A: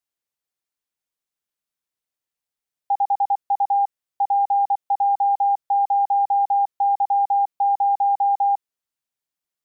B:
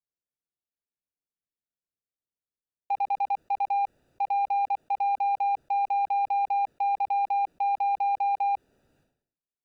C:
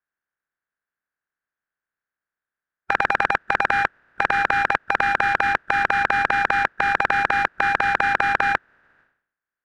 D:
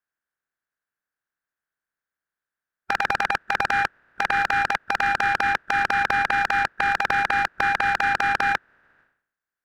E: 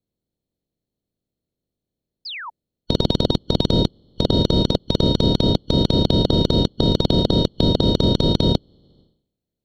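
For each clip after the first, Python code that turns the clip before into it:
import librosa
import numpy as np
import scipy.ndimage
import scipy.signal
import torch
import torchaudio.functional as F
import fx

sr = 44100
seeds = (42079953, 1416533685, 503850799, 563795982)

y1 = fx.wiener(x, sr, points=41)
y1 = fx.sustainer(y1, sr, db_per_s=92.0)
y1 = F.gain(torch.from_numpy(y1), -3.5).numpy()
y2 = fx.spec_flatten(y1, sr, power=0.21)
y2 = fx.lowpass_res(y2, sr, hz=1600.0, q=6.1)
y2 = F.gain(torch.from_numpy(y2), 7.0).numpy()
y3 = np.clip(10.0 ** (11.5 / 20.0) * y2, -1.0, 1.0) / 10.0 ** (11.5 / 20.0)
y3 = F.gain(torch.from_numpy(y3), -1.0).numpy()
y4 = fx.band_shuffle(y3, sr, order='2413')
y4 = fx.spec_paint(y4, sr, seeds[0], shape='fall', start_s=2.25, length_s=0.25, low_hz=850.0, high_hz=5300.0, level_db=-28.0)
y4 = fx.low_shelf_res(y4, sr, hz=770.0, db=10.5, q=1.5)
y4 = F.gain(torch.from_numpy(y4), -2.5).numpy()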